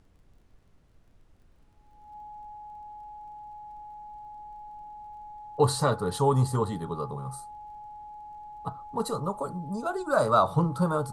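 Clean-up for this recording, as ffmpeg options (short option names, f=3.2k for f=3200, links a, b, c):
-af "adeclick=t=4,bandreject=f=840:w=30,agate=range=-21dB:threshold=-50dB"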